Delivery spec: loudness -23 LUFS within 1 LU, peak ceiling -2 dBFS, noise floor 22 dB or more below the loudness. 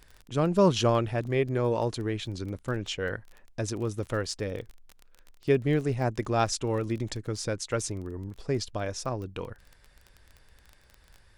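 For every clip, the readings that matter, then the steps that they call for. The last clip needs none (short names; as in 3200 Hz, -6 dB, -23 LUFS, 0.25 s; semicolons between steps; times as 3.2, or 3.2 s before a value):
ticks 19/s; loudness -29.5 LUFS; peak -11.0 dBFS; loudness target -23.0 LUFS
-> de-click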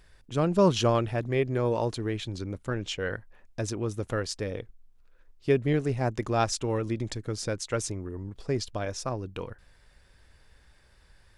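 ticks 0.088/s; loudness -29.5 LUFS; peak -11.0 dBFS; loudness target -23.0 LUFS
-> gain +6.5 dB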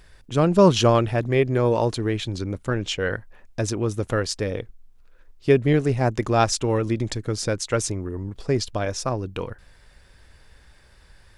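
loudness -23.0 LUFS; peak -4.5 dBFS; noise floor -53 dBFS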